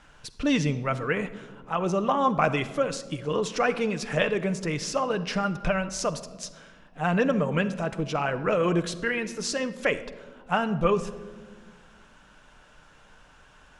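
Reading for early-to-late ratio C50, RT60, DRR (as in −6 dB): 14.0 dB, 1.5 s, 9.5 dB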